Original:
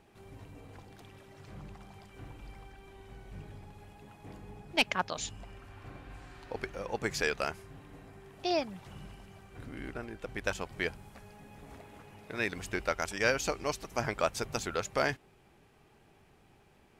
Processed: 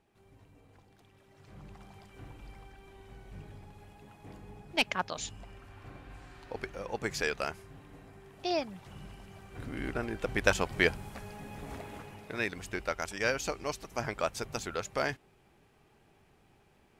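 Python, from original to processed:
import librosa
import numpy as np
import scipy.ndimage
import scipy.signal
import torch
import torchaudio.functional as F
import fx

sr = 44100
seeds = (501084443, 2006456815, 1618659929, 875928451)

y = fx.gain(x, sr, db=fx.line((1.12, -9.5), (1.8, -1.0), (8.86, -1.0), (10.19, 7.5), (11.94, 7.5), (12.54, -2.0)))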